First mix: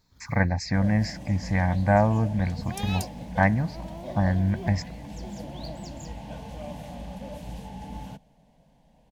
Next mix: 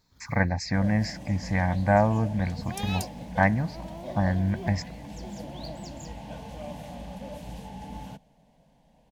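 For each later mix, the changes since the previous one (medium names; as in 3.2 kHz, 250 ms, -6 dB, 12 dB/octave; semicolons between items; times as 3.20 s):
master: add bass shelf 140 Hz -3.5 dB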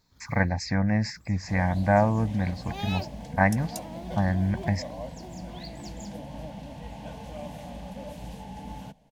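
second sound: entry +0.75 s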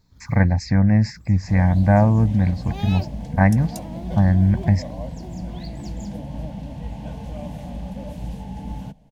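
master: add bass shelf 290 Hz +11.5 dB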